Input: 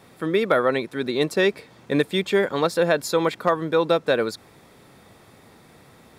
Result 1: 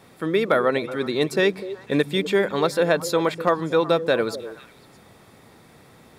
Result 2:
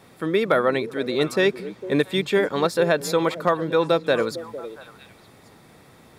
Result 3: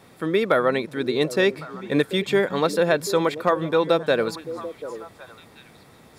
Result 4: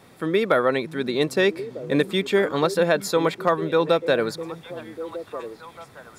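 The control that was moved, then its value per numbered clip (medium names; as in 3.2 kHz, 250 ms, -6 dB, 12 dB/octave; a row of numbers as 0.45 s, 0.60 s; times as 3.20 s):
repeats whose band climbs or falls, time: 124 ms, 227 ms, 369 ms, 624 ms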